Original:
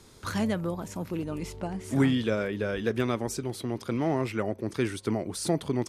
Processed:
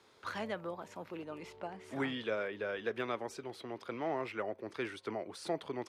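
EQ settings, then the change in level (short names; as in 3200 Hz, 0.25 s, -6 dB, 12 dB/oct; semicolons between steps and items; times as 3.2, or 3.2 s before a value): HPF 80 Hz; three-band isolator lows -15 dB, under 400 Hz, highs -15 dB, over 4100 Hz; -4.5 dB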